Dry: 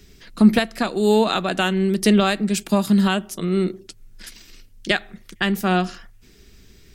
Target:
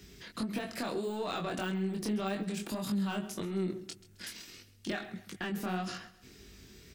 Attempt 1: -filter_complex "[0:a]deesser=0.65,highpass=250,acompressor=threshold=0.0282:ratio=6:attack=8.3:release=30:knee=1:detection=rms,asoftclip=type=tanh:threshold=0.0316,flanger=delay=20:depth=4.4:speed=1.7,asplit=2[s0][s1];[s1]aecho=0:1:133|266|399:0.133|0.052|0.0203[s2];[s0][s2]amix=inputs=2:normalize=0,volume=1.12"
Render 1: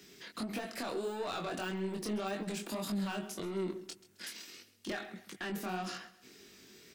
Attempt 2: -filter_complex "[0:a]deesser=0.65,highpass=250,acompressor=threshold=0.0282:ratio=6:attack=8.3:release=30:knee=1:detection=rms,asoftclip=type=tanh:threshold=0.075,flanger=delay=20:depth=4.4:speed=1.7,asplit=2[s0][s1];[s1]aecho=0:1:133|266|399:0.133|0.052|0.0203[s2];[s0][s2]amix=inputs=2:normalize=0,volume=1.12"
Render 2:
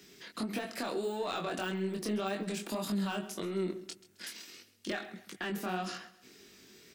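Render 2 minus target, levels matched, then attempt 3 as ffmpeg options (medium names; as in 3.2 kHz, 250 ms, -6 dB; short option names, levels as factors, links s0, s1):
125 Hz band -2.5 dB
-filter_complex "[0:a]deesser=0.65,highpass=63,acompressor=threshold=0.0282:ratio=6:attack=8.3:release=30:knee=1:detection=rms,asoftclip=type=tanh:threshold=0.075,flanger=delay=20:depth=4.4:speed=1.7,asplit=2[s0][s1];[s1]aecho=0:1:133|266|399:0.133|0.052|0.0203[s2];[s0][s2]amix=inputs=2:normalize=0,volume=1.12"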